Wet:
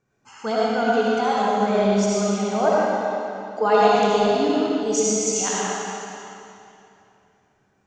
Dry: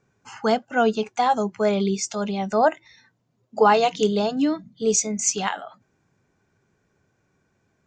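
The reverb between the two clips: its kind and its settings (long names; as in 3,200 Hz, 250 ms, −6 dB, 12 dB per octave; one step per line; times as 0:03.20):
comb and all-pass reverb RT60 2.8 s, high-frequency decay 0.9×, pre-delay 35 ms, DRR −7 dB
level −6 dB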